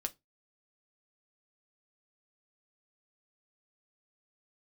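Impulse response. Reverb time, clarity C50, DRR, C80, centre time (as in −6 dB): 0.20 s, 25.0 dB, 6.0 dB, 34.5 dB, 4 ms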